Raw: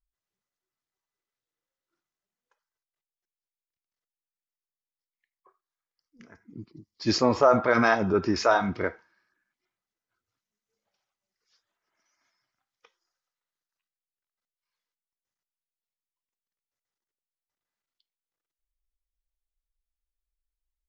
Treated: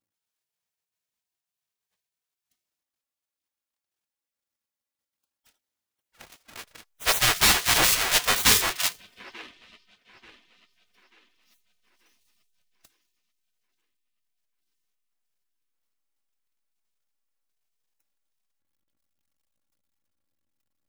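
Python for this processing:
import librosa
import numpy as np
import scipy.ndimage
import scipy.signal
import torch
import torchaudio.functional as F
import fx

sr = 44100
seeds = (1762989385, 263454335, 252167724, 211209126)

p1 = fx.halfwave_hold(x, sr)
p2 = p1 + 0.64 * np.pad(p1, (int(3.6 * sr / 1000.0), 0))[:len(p1)]
p3 = p2 + fx.echo_wet_bandpass(p2, sr, ms=887, feedback_pct=41, hz=1200.0, wet_db=-16.5, dry=0)
p4 = fx.spec_gate(p3, sr, threshold_db=-20, keep='weak')
p5 = fx.backlash(p4, sr, play_db=-44.5)
p6 = p4 + (p5 * librosa.db_to_amplitude(-5.5))
p7 = fx.rider(p6, sr, range_db=10, speed_s=0.5)
y = p7 * librosa.db_to_amplitude(2.5)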